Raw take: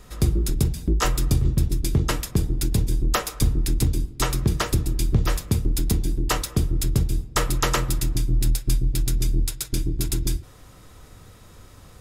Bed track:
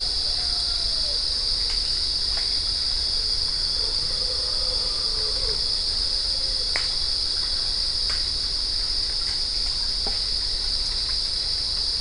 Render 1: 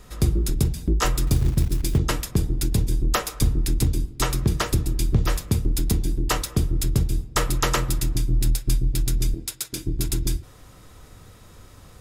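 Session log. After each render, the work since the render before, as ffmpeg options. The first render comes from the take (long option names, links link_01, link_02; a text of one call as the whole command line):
ffmpeg -i in.wav -filter_complex "[0:a]asplit=3[link_01][link_02][link_03];[link_01]afade=type=out:start_time=1.26:duration=0.02[link_04];[link_02]acrusher=bits=6:mode=log:mix=0:aa=0.000001,afade=type=in:start_time=1.26:duration=0.02,afade=type=out:start_time=1.97:duration=0.02[link_05];[link_03]afade=type=in:start_time=1.97:duration=0.02[link_06];[link_04][link_05][link_06]amix=inputs=3:normalize=0,asettb=1/sr,asplit=3[link_07][link_08][link_09];[link_07]atrim=end=9.344[link_10];[link_08]atrim=start=9.34:end=9.87,asetpts=PTS-STARTPTS,afade=type=in:duration=0.004:curve=qsin,afade=type=out:start_time=0.526:duration=0.004:curve=qsin,highpass=frequency=360:poles=1[link_11];[link_09]atrim=start=9.866[link_12];[link_10][link_11]acrossfade=duration=0.004:curve1=hsin:curve2=qsin[link_13];[link_13][link_12]acrossfade=duration=0.004:curve1=qsin:curve2=hsin" out.wav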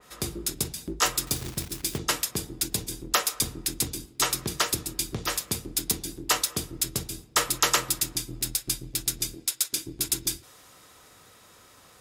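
ffmpeg -i in.wav -af "highpass=frequency=650:poles=1,adynamicequalizer=threshold=0.00891:dfrequency=2900:dqfactor=0.7:tfrequency=2900:tqfactor=0.7:attack=5:release=100:ratio=0.375:range=2.5:mode=boostabove:tftype=highshelf" out.wav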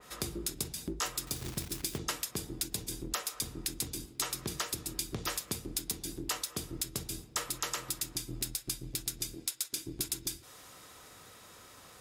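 ffmpeg -i in.wav -af "alimiter=limit=-12.5dB:level=0:latency=1:release=360,acompressor=threshold=-34dB:ratio=3" out.wav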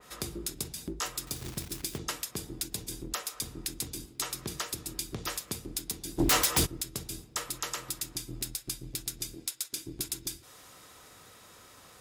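ffmpeg -i in.wav -filter_complex "[0:a]asplit=3[link_01][link_02][link_03];[link_01]afade=type=out:start_time=6.18:duration=0.02[link_04];[link_02]aeval=exprs='0.112*sin(PI/2*5.01*val(0)/0.112)':channel_layout=same,afade=type=in:start_time=6.18:duration=0.02,afade=type=out:start_time=6.65:duration=0.02[link_05];[link_03]afade=type=in:start_time=6.65:duration=0.02[link_06];[link_04][link_05][link_06]amix=inputs=3:normalize=0" out.wav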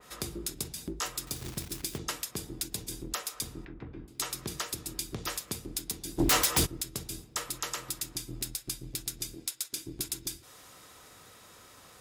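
ffmpeg -i in.wav -filter_complex "[0:a]asettb=1/sr,asplit=3[link_01][link_02][link_03];[link_01]atrim=end=3.654[link_04];[link_02]atrim=start=3.65:end=4.08,asetpts=PTS-STARTPTS,afade=type=in:duration=0.004:curve=qsin,afade=type=out:start_time=0.426:duration=0.004:curve=qsin,lowpass=frequency=1900:width=0.5412,lowpass=frequency=1900:width=1.3066[link_05];[link_03]atrim=start=4.076[link_06];[link_04][link_05]acrossfade=duration=0.004:curve1=hsin:curve2=qsin[link_07];[link_07][link_06]acrossfade=duration=0.004:curve1=qsin:curve2=hsin" out.wav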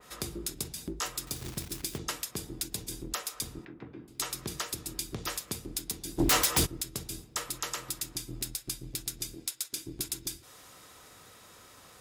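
ffmpeg -i in.wav -filter_complex "[0:a]asettb=1/sr,asplit=3[link_01][link_02][link_03];[link_01]atrim=end=3.594[link_04];[link_02]atrim=start=3.59:end=4.09,asetpts=PTS-STARTPTS,afade=type=in:duration=0.004:curve=qsin,afade=type=out:start_time=0.496:duration=0.004:curve=qsin,highpass=140[link_05];[link_03]atrim=start=4.086[link_06];[link_04][link_05]acrossfade=duration=0.004:curve1=hsin:curve2=qsin[link_07];[link_07][link_06]acrossfade=duration=0.004:curve1=qsin:curve2=hsin" out.wav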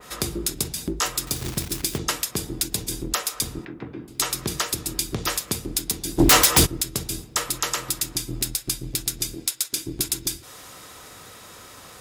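ffmpeg -i in.wav -af "volume=10dB" out.wav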